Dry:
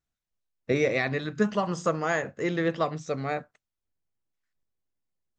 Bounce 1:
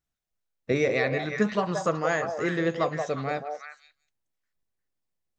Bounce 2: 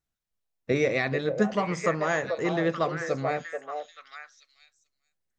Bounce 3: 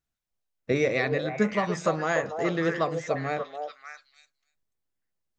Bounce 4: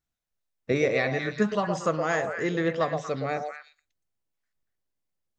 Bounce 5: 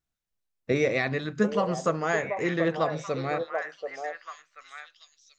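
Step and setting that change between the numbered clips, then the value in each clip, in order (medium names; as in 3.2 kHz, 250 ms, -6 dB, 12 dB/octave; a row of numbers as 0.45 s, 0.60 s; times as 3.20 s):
repeats whose band climbs or falls, time: 177 ms, 437 ms, 292 ms, 118 ms, 734 ms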